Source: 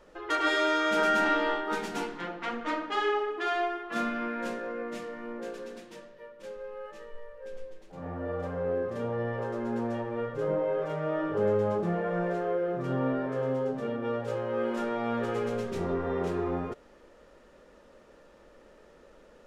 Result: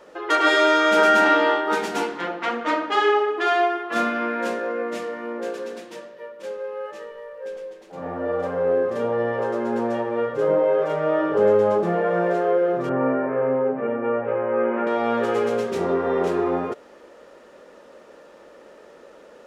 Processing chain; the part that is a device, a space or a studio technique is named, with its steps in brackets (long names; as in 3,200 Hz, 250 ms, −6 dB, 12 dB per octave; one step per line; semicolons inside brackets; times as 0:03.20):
0:12.89–0:14.87: Chebyshev band-pass filter 100–2,400 Hz, order 4
filter by subtraction (in parallel: low-pass filter 470 Hz 12 dB per octave + polarity inversion)
on the sum: level +8 dB